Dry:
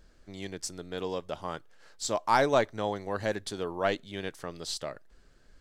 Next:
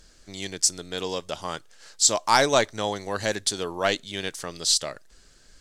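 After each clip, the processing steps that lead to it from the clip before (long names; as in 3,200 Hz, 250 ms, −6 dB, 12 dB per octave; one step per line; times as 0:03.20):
parametric band 7,100 Hz +14.5 dB 2.4 octaves
level +2.5 dB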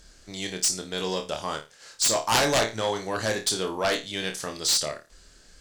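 flutter between parallel walls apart 4.6 metres, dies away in 0.26 s
harmonic generator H 3 −9 dB, 7 −15 dB, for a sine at −1 dBFS
level −1.5 dB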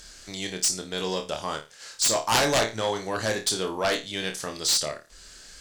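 one half of a high-frequency compander encoder only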